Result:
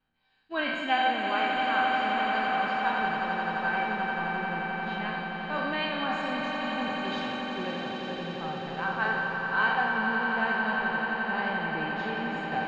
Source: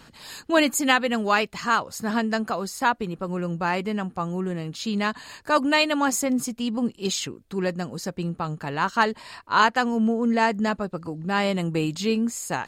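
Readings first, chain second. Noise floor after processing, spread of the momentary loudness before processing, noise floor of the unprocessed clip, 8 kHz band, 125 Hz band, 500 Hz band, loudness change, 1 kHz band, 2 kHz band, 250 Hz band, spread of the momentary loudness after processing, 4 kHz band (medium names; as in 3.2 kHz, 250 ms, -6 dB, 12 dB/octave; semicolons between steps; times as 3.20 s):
-36 dBFS, 10 LU, -53 dBFS, under -25 dB, -9.0 dB, -7.5 dB, -4.0 dB, -2.0 dB, +0.5 dB, -9.5 dB, 7 LU, -5.0 dB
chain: spectral sustain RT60 1.31 s; gate -27 dBFS, range -18 dB; low-pass 3.4 kHz 24 dB/octave; feedback comb 770 Hz, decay 0.19 s, harmonics all, mix 90%; echo with a slow build-up 87 ms, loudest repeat 8, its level -9.5 dB; trim +3.5 dB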